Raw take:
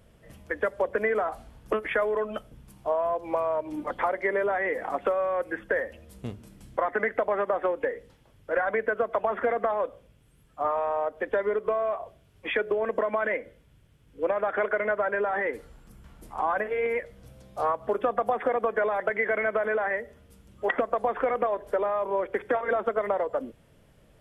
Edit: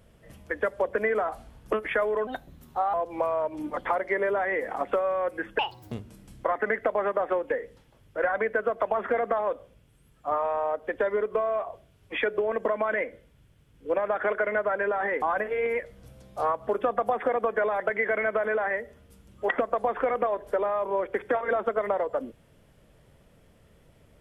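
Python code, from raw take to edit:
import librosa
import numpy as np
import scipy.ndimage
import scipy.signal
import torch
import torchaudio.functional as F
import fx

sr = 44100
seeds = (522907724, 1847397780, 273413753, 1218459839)

y = fx.edit(x, sr, fx.speed_span(start_s=2.27, length_s=0.8, speed=1.2),
    fx.speed_span(start_s=5.72, length_s=0.53, speed=1.59),
    fx.cut(start_s=15.55, length_s=0.87), tone=tone)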